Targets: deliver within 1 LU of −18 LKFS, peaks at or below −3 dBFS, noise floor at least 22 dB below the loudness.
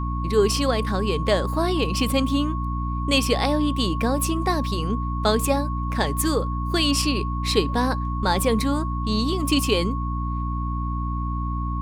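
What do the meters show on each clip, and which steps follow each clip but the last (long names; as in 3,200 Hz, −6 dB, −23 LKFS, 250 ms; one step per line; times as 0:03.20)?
mains hum 60 Hz; hum harmonics up to 300 Hz; level of the hum −24 dBFS; interfering tone 1,100 Hz; level of the tone −31 dBFS; integrated loudness −23.0 LKFS; sample peak −5.0 dBFS; target loudness −18.0 LKFS
→ hum removal 60 Hz, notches 5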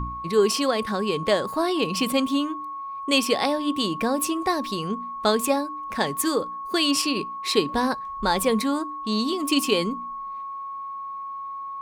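mains hum none found; interfering tone 1,100 Hz; level of the tone −31 dBFS
→ notch filter 1,100 Hz, Q 30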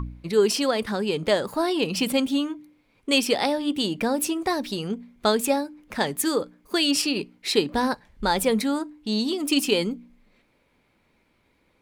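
interfering tone none found; integrated loudness −24.5 LKFS; sample peak −5.5 dBFS; target loudness −18.0 LKFS
→ level +6.5 dB
brickwall limiter −3 dBFS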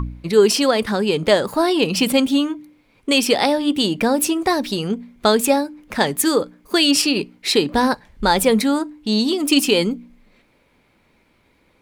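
integrated loudness −18.0 LKFS; sample peak −3.0 dBFS; background noise floor −60 dBFS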